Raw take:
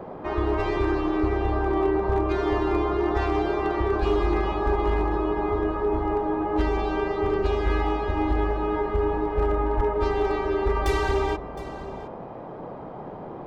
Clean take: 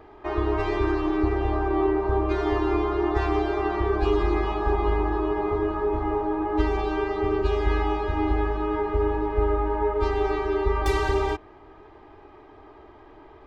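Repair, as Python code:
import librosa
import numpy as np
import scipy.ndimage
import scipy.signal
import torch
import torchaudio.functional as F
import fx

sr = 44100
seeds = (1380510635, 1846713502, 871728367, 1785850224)

y = fx.fix_declip(x, sr, threshold_db=-15.5)
y = fx.highpass(y, sr, hz=140.0, slope=24, at=(9.76, 9.88), fade=0.02)
y = fx.noise_reduce(y, sr, print_start_s=12.1, print_end_s=12.6, reduce_db=11.0)
y = fx.fix_echo_inverse(y, sr, delay_ms=714, level_db=-16.0)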